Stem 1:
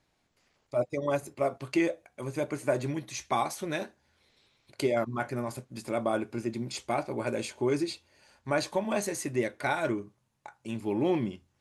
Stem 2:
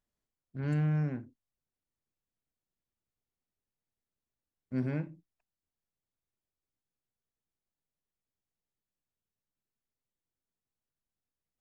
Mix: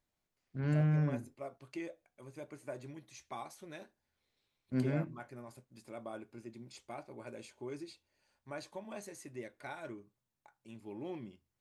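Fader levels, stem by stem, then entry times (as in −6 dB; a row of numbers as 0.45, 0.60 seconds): −16.0, −0.5 decibels; 0.00, 0.00 seconds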